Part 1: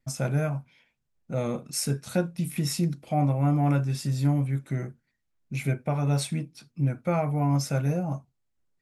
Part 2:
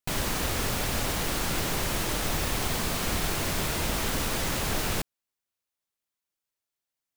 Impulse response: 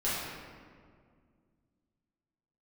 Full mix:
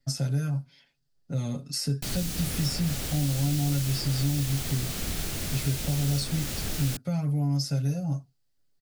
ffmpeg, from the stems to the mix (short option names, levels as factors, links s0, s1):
-filter_complex "[0:a]equalizer=f=4700:t=o:w=0.4:g=12,bandreject=f=2300:w=6.4,aecho=1:1:7.2:0.92,volume=0.944[s0];[1:a]adelay=1950,volume=0.891[s1];[s0][s1]amix=inputs=2:normalize=0,equalizer=f=1000:w=3.2:g=-6,acrossover=split=280|3100[s2][s3][s4];[s2]acompressor=threshold=0.0562:ratio=4[s5];[s3]acompressor=threshold=0.00794:ratio=4[s6];[s4]acompressor=threshold=0.0251:ratio=4[s7];[s5][s6][s7]amix=inputs=3:normalize=0"